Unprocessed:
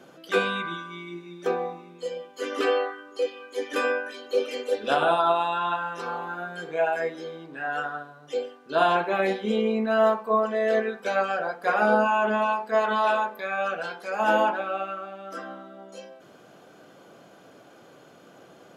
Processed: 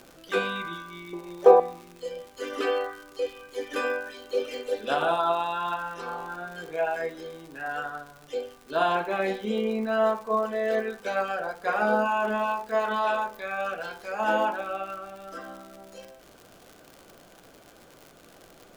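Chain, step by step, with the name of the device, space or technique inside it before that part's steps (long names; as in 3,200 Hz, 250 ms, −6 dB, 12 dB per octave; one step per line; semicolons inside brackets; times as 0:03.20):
0:01.13–0:01.60: flat-topped bell 670 Hz +16 dB
vinyl LP (surface crackle 120 per second −34 dBFS; pink noise bed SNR 33 dB)
level −3 dB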